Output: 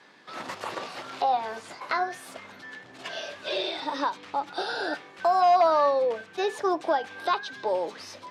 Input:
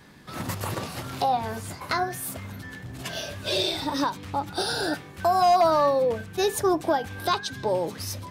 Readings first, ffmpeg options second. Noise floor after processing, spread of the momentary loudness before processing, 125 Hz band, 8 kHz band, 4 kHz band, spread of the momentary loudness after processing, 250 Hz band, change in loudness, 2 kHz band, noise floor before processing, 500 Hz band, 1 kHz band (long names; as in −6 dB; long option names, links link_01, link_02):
−50 dBFS, 14 LU, below −20 dB, −12.0 dB, −5.0 dB, 19 LU, −6.5 dB, −1.5 dB, −0.5 dB, −44 dBFS, −1.5 dB, −0.5 dB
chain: -filter_complex "[0:a]highpass=430,lowpass=5200,acrossover=split=3400[link_01][link_02];[link_02]acompressor=threshold=-42dB:ratio=4:attack=1:release=60[link_03];[link_01][link_03]amix=inputs=2:normalize=0"